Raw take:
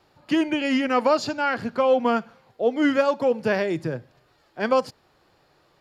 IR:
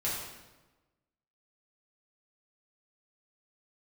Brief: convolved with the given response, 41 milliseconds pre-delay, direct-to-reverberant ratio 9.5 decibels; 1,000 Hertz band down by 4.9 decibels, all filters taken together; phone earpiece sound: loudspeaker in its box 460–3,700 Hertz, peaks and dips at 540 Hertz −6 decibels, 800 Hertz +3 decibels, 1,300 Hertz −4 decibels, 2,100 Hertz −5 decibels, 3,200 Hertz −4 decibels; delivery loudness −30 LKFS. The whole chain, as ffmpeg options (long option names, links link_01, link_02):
-filter_complex "[0:a]equalizer=frequency=1000:width_type=o:gain=-6,asplit=2[link_01][link_02];[1:a]atrim=start_sample=2205,adelay=41[link_03];[link_02][link_03]afir=irnorm=-1:irlink=0,volume=-15.5dB[link_04];[link_01][link_04]amix=inputs=2:normalize=0,highpass=460,equalizer=frequency=540:width_type=q:width=4:gain=-6,equalizer=frequency=800:width_type=q:width=4:gain=3,equalizer=frequency=1300:width_type=q:width=4:gain=-4,equalizer=frequency=2100:width_type=q:width=4:gain=-5,equalizer=frequency=3200:width_type=q:width=4:gain=-4,lowpass=frequency=3700:width=0.5412,lowpass=frequency=3700:width=1.3066"